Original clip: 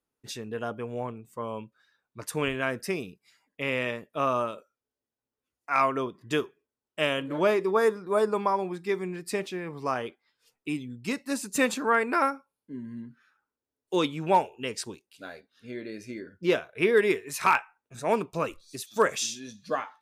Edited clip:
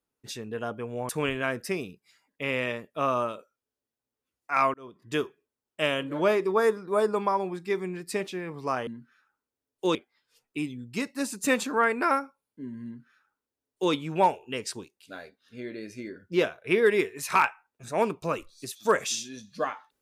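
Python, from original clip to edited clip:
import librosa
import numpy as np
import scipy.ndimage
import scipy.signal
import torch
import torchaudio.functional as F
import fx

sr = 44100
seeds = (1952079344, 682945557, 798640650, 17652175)

y = fx.edit(x, sr, fx.cut(start_s=1.09, length_s=1.19),
    fx.fade_in_span(start_s=5.93, length_s=0.49),
    fx.duplicate(start_s=12.96, length_s=1.08, to_s=10.06), tone=tone)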